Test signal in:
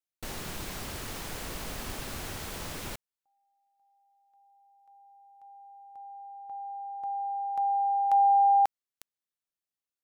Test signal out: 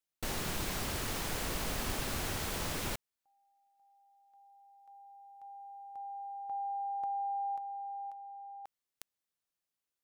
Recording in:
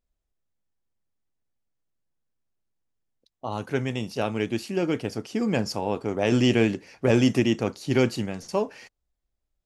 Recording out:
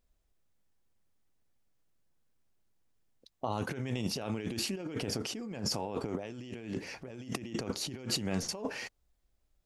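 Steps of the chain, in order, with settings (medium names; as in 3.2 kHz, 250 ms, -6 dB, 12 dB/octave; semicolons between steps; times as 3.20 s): compressor with a negative ratio -35 dBFS, ratio -1; trim -3 dB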